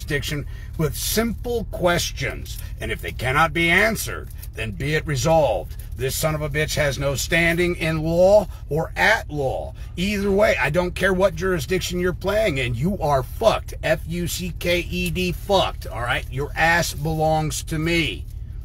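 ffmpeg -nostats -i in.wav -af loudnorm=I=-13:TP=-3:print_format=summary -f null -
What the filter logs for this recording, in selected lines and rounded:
Input Integrated:    -21.4 LUFS
Input True Peak:      -3.6 dBTP
Input LRA:             2.4 LU
Input Threshold:     -31.7 LUFS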